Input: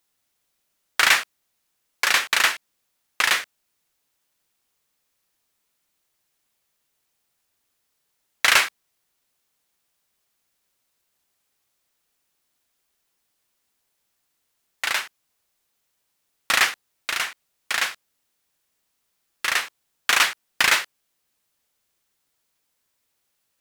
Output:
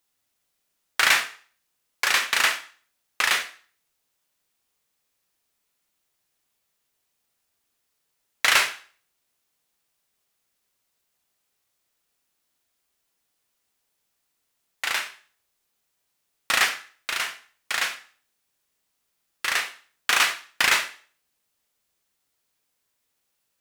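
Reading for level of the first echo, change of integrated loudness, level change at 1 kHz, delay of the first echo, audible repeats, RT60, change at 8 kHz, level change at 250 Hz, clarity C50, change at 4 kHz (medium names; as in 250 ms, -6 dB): no echo, -2.0 dB, -1.5 dB, no echo, no echo, 0.40 s, -1.5 dB, -1.5 dB, 12.5 dB, -1.5 dB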